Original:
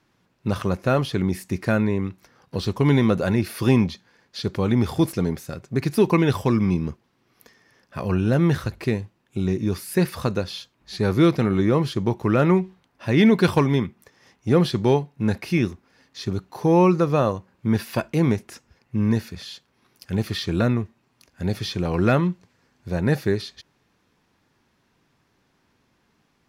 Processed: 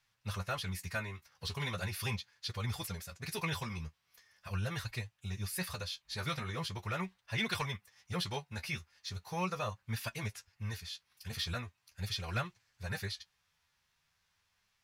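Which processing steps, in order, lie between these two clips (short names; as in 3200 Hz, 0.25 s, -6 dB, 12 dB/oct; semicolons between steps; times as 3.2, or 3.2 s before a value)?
passive tone stack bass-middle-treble 10-0-10; time stretch by phase-locked vocoder 0.56×; flange 0.4 Hz, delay 8.2 ms, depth 5.4 ms, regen +32%; in parallel at -11.5 dB: hard clip -32 dBFS, distortion -18 dB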